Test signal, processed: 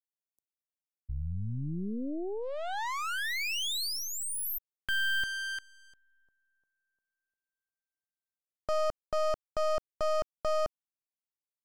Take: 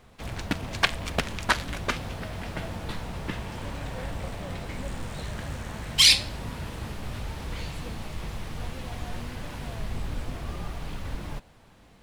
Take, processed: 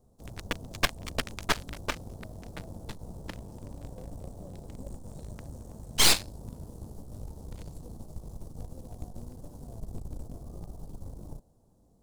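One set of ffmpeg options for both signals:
ffmpeg -i in.wav -filter_complex "[0:a]aeval=exprs='0.891*(cos(1*acos(clip(val(0)/0.891,-1,1)))-cos(1*PI/2))+0.0501*(cos(6*acos(clip(val(0)/0.891,-1,1)))-cos(6*PI/2))+0.01*(cos(7*acos(clip(val(0)/0.891,-1,1)))-cos(7*PI/2))+0.282*(cos(8*acos(clip(val(0)/0.891,-1,1)))-cos(8*PI/2))':channel_layout=same,acrossover=split=790|5900[link_01][link_02][link_03];[link_02]acrusher=bits=4:mix=0:aa=0.5[link_04];[link_01][link_04][link_03]amix=inputs=3:normalize=0,volume=-7dB" out.wav

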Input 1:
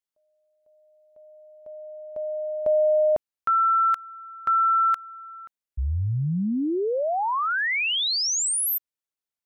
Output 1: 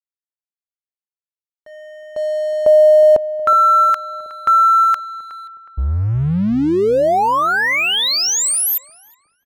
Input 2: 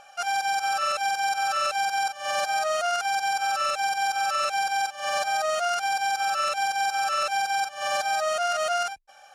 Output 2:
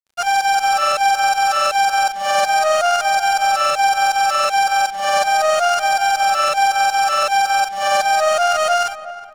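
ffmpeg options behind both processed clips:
ffmpeg -i in.wav -filter_complex "[0:a]adynamicequalizer=threshold=0.0112:dfrequency=570:dqfactor=0.75:tfrequency=570:tqfactor=0.75:attack=5:release=100:ratio=0.375:range=1.5:mode=boostabove:tftype=bell,aeval=exprs='sgn(val(0))*max(abs(val(0))-0.0075,0)':channel_layout=same,asplit=2[link_01][link_02];[link_02]adelay=366,lowpass=frequency=1500:poles=1,volume=-13dB,asplit=2[link_03][link_04];[link_04]adelay=366,lowpass=frequency=1500:poles=1,volume=0.48,asplit=2[link_05][link_06];[link_06]adelay=366,lowpass=frequency=1500:poles=1,volume=0.48,asplit=2[link_07][link_08];[link_08]adelay=366,lowpass=frequency=1500:poles=1,volume=0.48,asplit=2[link_09][link_10];[link_10]adelay=366,lowpass=frequency=1500:poles=1,volume=0.48[link_11];[link_03][link_05][link_07][link_09][link_11]amix=inputs=5:normalize=0[link_12];[link_01][link_12]amix=inputs=2:normalize=0,volume=8.5dB" out.wav

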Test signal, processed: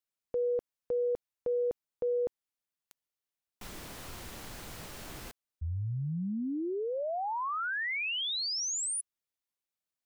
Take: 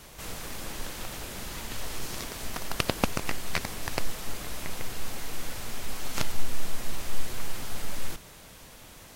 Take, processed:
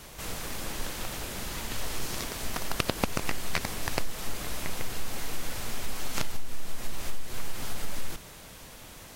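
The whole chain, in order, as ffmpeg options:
ffmpeg -i in.wav -af "acompressor=threshold=-23dB:ratio=12,volume=2dB" out.wav

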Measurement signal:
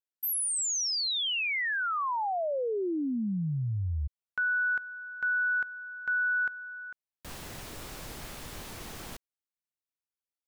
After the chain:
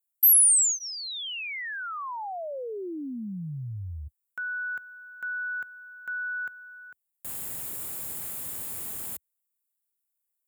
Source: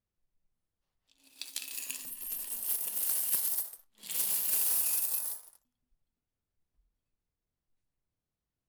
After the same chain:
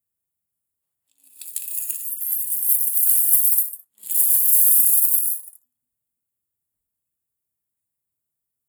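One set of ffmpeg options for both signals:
ffmpeg -i in.wav -af "aexciter=amount=7.2:drive=4.8:freq=6900,highpass=frequency=72:width=0.5412,highpass=frequency=72:width=1.3066,aeval=exprs='1.26*(cos(1*acos(clip(val(0)/1.26,-1,1)))-cos(1*PI/2))+0.0398*(cos(3*acos(clip(val(0)/1.26,-1,1)))-cos(3*PI/2))':channel_layout=same,bandreject=frequency=6000:width=5.4,volume=-3.5dB" out.wav

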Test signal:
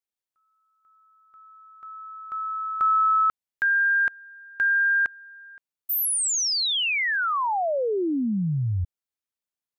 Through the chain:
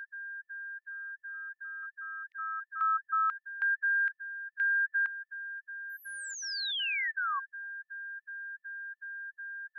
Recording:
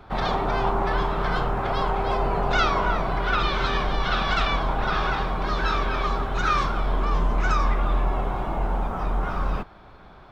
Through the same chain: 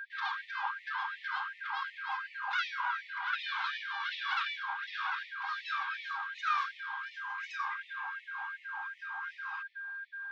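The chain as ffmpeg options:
ffmpeg -i in.wav -af "highpass=280,lowpass=4000,aeval=exprs='val(0)+0.0282*sin(2*PI*1600*n/s)':channel_layout=same,afftfilt=real='re*gte(b*sr/1024,760*pow(1800/760,0.5+0.5*sin(2*PI*2.7*pts/sr)))':imag='im*gte(b*sr/1024,760*pow(1800/760,0.5+0.5*sin(2*PI*2.7*pts/sr)))':win_size=1024:overlap=0.75,volume=-7.5dB" out.wav

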